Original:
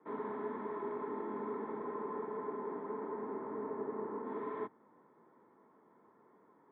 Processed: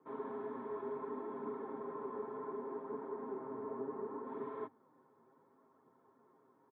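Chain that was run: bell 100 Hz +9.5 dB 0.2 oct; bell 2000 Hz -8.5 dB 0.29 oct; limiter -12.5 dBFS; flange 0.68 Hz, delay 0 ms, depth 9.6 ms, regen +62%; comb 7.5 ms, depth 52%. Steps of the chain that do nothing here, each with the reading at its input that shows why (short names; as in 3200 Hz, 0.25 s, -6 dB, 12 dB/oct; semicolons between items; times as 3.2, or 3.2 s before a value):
limiter -12.5 dBFS: input peak -28.5 dBFS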